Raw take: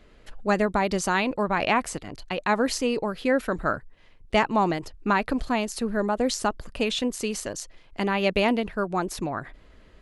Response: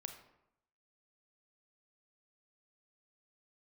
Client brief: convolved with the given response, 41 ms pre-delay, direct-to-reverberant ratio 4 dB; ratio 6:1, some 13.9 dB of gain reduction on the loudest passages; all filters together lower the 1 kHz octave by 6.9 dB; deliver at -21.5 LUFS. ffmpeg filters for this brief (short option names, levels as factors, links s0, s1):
-filter_complex "[0:a]equalizer=f=1000:t=o:g=-9,acompressor=threshold=0.0178:ratio=6,asplit=2[s0][s1];[1:a]atrim=start_sample=2205,adelay=41[s2];[s1][s2]afir=irnorm=-1:irlink=0,volume=0.944[s3];[s0][s3]amix=inputs=2:normalize=0,volume=6.31"